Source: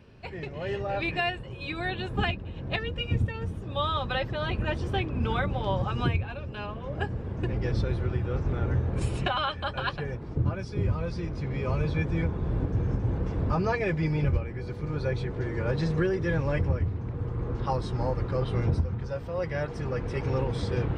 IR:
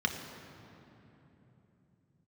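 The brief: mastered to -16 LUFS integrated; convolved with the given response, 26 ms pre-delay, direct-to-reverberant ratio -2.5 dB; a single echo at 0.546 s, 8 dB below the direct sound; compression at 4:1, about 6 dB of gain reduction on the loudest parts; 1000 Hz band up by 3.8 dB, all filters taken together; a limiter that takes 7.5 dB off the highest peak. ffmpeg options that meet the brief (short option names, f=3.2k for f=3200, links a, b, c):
-filter_complex "[0:a]equalizer=f=1k:t=o:g=5,acompressor=threshold=-28dB:ratio=4,alimiter=level_in=0.5dB:limit=-24dB:level=0:latency=1,volume=-0.5dB,aecho=1:1:546:0.398,asplit=2[a][b];[1:a]atrim=start_sample=2205,adelay=26[c];[b][c]afir=irnorm=-1:irlink=0,volume=-5.5dB[d];[a][d]amix=inputs=2:normalize=0,volume=12.5dB"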